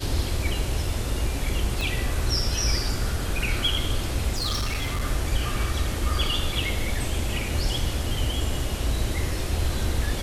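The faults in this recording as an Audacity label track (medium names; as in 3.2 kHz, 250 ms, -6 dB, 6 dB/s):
1.810000	1.810000	pop
4.360000	5.040000	clipped -22.5 dBFS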